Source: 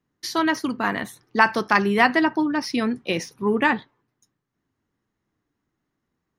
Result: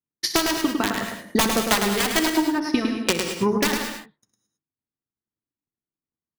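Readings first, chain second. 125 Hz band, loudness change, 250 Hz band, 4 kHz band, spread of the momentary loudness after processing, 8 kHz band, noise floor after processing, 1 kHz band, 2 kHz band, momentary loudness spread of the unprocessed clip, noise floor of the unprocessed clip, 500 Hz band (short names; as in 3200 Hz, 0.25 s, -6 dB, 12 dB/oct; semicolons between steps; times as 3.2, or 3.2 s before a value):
+1.0 dB, -0.5 dB, +0.5 dB, +7.0 dB, 6 LU, +13.0 dB, under -85 dBFS, -4.0 dB, -4.5 dB, 10 LU, -80 dBFS, 0.0 dB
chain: one diode to ground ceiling -6.5 dBFS; gate with hold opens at -49 dBFS; in parallel at +1 dB: compressor 16:1, threshold -28 dBFS, peak gain reduction 16.5 dB; on the sum: wrapped overs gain 11 dB; transient shaper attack +11 dB, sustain -3 dB; on a send: tapped delay 63/105 ms -16/-6 dB; on the sum: non-linear reverb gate 0.24 s rising, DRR 7 dB; mismatched tape noise reduction decoder only; gain -7.5 dB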